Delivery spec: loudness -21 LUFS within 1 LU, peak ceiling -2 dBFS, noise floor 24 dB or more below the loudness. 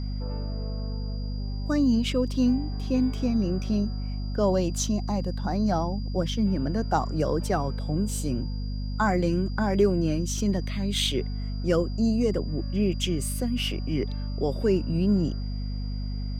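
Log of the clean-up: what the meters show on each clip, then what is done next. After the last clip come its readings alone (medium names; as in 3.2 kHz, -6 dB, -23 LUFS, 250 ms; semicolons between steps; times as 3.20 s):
hum 50 Hz; highest harmonic 250 Hz; hum level -28 dBFS; steady tone 4.8 kHz; tone level -47 dBFS; loudness -27.0 LUFS; peak level -10.5 dBFS; loudness target -21.0 LUFS
-> hum notches 50/100/150/200/250 Hz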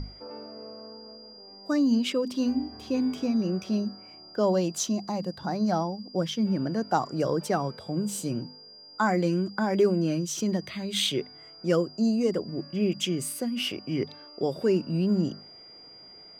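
hum not found; steady tone 4.8 kHz; tone level -47 dBFS
-> band-stop 4.8 kHz, Q 30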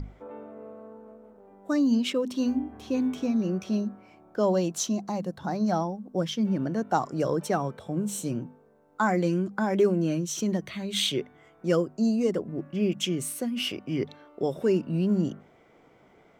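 steady tone not found; loudness -28.0 LUFS; peak level -11.0 dBFS; loudness target -21.0 LUFS
-> trim +7 dB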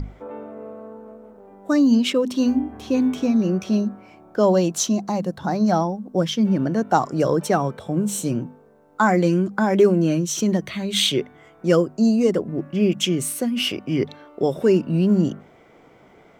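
loudness -21.0 LUFS; peak level -4.0 dBFS; noise floor -51 dBFS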